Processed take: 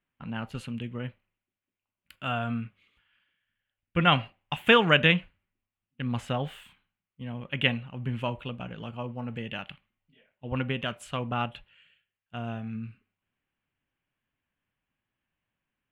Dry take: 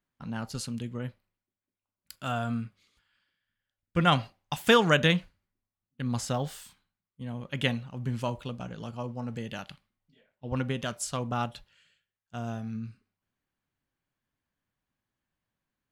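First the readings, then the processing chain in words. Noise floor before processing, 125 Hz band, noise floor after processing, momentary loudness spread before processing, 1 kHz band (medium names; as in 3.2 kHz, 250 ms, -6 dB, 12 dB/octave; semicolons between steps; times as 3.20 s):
under -85 dBFS, 0.0 dB, under -85 dBFS, 17 LU, +1.0 dB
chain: resonant high shelf 3.8 kHz -11 dB, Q 3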